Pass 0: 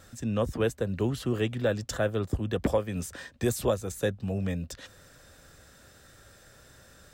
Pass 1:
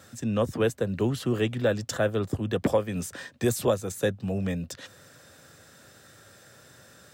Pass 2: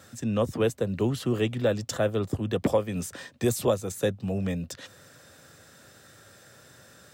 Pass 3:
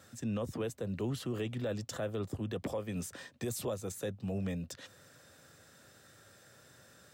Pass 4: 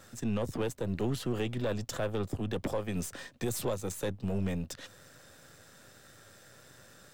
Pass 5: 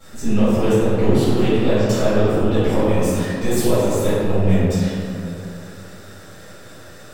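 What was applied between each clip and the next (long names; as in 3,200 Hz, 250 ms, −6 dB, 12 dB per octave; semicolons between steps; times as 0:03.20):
high-pass filter 97 Hz 24 dB per octave; level +2.5 dB
dynamic equaliser 1,600 Hz, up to −5 dB, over −50 dBFS, Q 4.1
brickwall limiter −21 dBFS, peak gain reduction 9 dB; level −6.5 dB
gain on one half-wave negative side −7 dB; level +6 dB
convolution reverb RT60 2.8 s, pre-delay 3 ms, DRR −16 dB; level −5 dB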